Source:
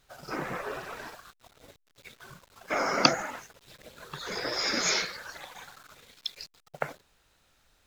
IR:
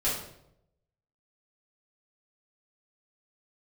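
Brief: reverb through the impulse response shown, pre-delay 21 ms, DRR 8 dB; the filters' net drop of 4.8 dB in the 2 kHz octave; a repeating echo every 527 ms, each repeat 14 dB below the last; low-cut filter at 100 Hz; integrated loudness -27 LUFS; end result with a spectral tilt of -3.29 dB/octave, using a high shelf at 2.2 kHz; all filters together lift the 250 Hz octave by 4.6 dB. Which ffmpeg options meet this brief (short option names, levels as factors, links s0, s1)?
-filter_complex "[0:a]highpass=100,equalizer=f=250:t=o:g=6,equalizer=f=2000:t=o:g=-4.5,highshelf=f=2200:g=-3.5,aecho=1:1:527|1054:0.2|0.0399,asplit=2[s0][s1];[1:a]atrim=start_sample=2205,adelay=21[s2];[s1][s2]afir=irnorm=-1:irlink=0,volume=0.141[s3];[s0][s3]amix=inputs=2:normalize=0,volume=1.78"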